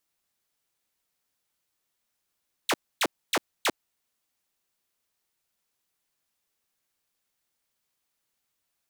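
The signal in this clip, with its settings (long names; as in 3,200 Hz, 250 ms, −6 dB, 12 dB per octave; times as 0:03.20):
repeated falling chirps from 4,500 Hz, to 220 Hz, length 0.05 s saw, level −18.5 dB, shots 4, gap 0.27 s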